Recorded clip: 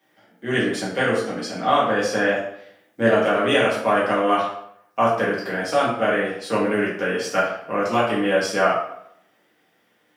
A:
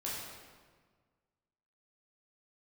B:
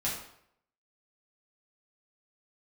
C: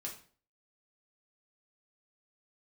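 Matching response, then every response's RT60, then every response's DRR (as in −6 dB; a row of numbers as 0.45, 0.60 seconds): B; 1.6, 0.70, 0.45 seconds; −7.0, −7.0, −2.0 decibels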